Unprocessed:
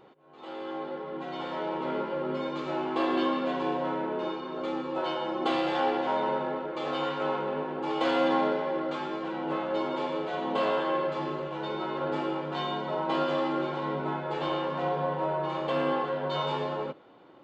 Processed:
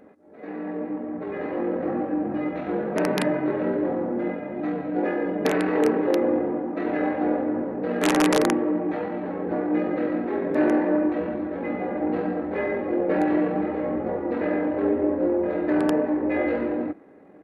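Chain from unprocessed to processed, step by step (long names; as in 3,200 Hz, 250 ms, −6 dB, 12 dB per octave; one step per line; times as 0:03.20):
wrap-around overflow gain 17 dB
pitch shifter −10 semitones
low shelf with overshoot 210 Hz −10 dB, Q 1.5
level +6 dB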